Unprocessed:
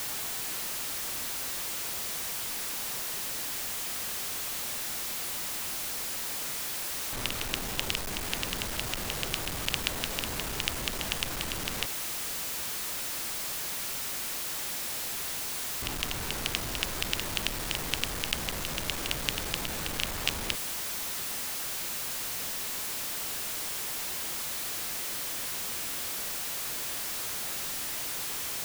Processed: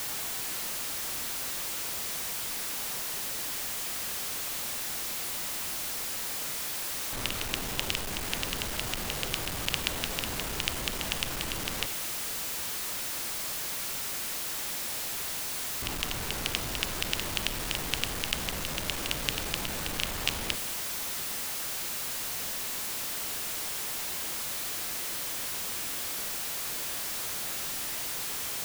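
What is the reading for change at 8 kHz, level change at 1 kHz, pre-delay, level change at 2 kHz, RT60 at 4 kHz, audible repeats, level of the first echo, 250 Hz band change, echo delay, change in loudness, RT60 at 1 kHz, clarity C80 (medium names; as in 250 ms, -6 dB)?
0.0 dB, +0.5 dB, 28 ms, 0.0 dB, 0.70 s, no echo, no echo, +0.5 dB, no echo, 0.0 dB, 1.0 s, 15.5 dB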